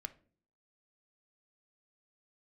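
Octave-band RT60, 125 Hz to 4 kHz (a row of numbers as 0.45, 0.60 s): 0.70, 0.70, 0.55, 0.35, 0.35, 0.30 s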